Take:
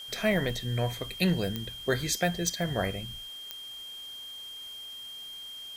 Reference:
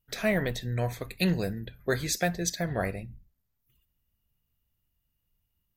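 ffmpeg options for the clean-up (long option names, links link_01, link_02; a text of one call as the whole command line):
ffmpeg -i in.wav -af "adeclick=threshold=4,bandreject=frequency=3200:width=30,afwtdn=0.0022" out.wav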